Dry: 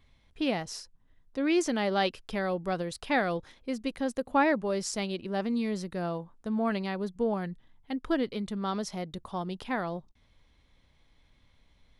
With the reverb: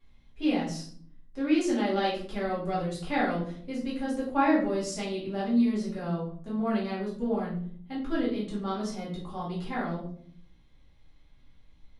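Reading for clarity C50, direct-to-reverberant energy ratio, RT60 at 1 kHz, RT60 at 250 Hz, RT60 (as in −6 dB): 5.0 dB, −8.5 dB, 0.45 s, 0.90 s, 0.55 s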